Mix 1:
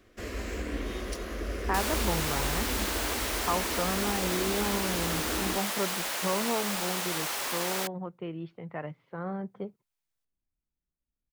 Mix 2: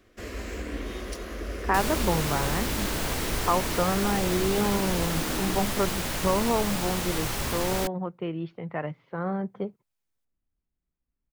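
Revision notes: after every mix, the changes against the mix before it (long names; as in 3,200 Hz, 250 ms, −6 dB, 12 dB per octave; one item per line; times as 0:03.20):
speech +5.5 dB
second sound: remove high-pass filter 580 Hz 12 dB per octave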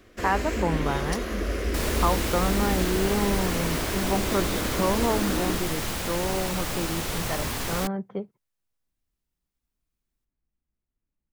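speech: entry −1.45 s
first sound +6.0 dB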